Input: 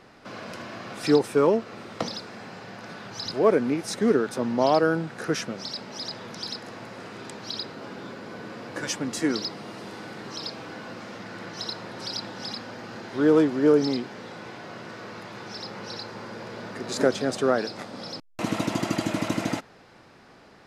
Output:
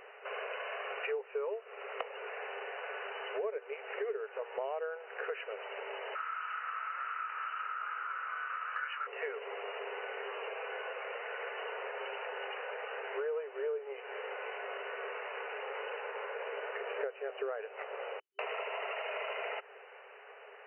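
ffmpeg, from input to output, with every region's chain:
-filter_complex "[0:a]asettb=1/sr,asplit=3[s0][s1][s2];[s0]atrim=end=6.154[s3];[s1]atrim=start=6.15:end=9.07,asetpts=PTS-STARTPTS,afade=t=in:d=0.004:c=qsin,afade=t=out:st=2.916:d=0.004:c=qsin,flanger=delay=20:depth=6.9:speed=1.1,highpass=f=1300:t=q:w=15[s4];[s2]atrim=start=9.066[s5];[s3][s4]acrossfade=d=0.004:c1=hsin:c2=qsin[s6];[s6][s5]acrossfade=d=0.004:c1=qsin:c2=hsin,afftfilt=real='re*between(b*sr/4096,390,3000)':imag='im*between(b*sr/4096,390,3000)':win_size=4096:overlap=0.75,equalizer=f=970:w=0.45:g=-9,acompressor=threshold=0.00631:ratio=6,volume=2.66"

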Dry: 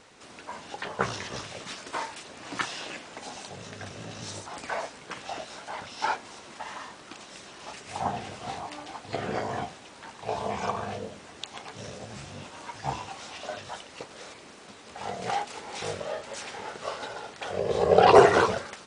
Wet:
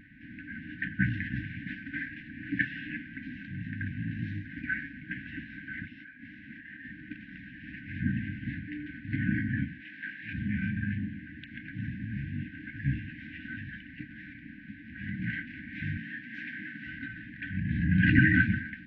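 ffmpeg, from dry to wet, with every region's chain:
-filter_complex "[0:a]asettb=1/sr,asplit=3[s0][s1][s2];[s0]atrim=end=5.854[s3];[s1]atrim=start=5.85:end=6.85,asetpts=PTS-STARTPTS,afade=t=in:d=0.004:c=qsin,afade=t=out:st=0.996:d=0.004:c=qsin,lowshelf=f=140:g=-5.5,acompressor=threshold=0.00891:ratio=16:attack=3.2:release=140:knee=1:detection=peak[s4];[s2]atrim=start=6.846[s5];[s3][s4]acrossfade=d=0.004:c1=hsin:c2=qsin[s6];[s6][s5]acrossfade=d=0.004:c1=qsin:c2=hsin,asettb=1/sr,asplit=3[s7][s8][s9];[s7]atrim=end=9.804[s10];[s8]atrim=start=9.8:end=10.33,asetpts=PTS-STARTPTS,afade=t=in:d=0.004:c=qsin,afade=t=out:st=0.526:d=0.004:c=qsin,highpass=170,lowpass=7800,tiltshelf=f=880:g=-7,asplit=2[s11][s12];[s12]adelay=19,volume=0.708[s13];[s11][s13]amix=inputs=2:normalize=0,atrim=end_sample=23373[s14];[s9]atrim=start=10.326[s15];[s10][s14]acrossfade=d=0.004:c1=hsin:c2=qsin[s16];[s16][s15]acrossfade=d=0.004:c1=qsin:c2=hsin,asettb=1/sr,asplit=3[s17][s18][s19];[s17]atrim=end=15.974[s20];[s18]atrim=start=15.97:end=16.87,asetpts=PTS-STARTPTS,afade=t=in:d=0.004:c=qsin,afade=t=out:st=0.896:d=0.004:c=qsin,highpass=190,highshelf=f=5900:g=10.5[s21];[s19]atrim=start=16.866[s22];[s20][s21]acrossfade=d=0.004:c1=hsin:c2=qsin[s23];[s23][s22]acrossfade=d=0.004:c1=qsin:c2=hsin,lowpass=f=1900:w=0.5412,lowpass=f=1900:w=1.3066,aemphasis=mode=reproduction:type=50fm,afftfilt=real='re*(1-between(b*sr/4096,320,1500))':imag='im*(1-between(b*sr/4096,320,1500))':win_size=4096:overlap=0.75,volume=2.66"

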